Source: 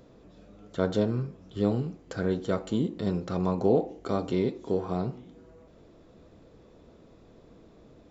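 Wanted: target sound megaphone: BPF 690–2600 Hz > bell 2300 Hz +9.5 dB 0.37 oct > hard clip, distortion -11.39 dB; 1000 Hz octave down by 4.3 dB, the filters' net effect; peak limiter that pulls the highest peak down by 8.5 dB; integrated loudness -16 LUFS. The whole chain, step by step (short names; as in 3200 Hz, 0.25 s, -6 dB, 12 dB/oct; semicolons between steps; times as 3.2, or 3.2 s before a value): bell 1000 Hz -4 dB; limiter -20 dBFS; BPF 690–2600 Hz; bell 2300 Hz +9.5 dB 0.37 oct; hard clip -37 dBFS; gain +29 dB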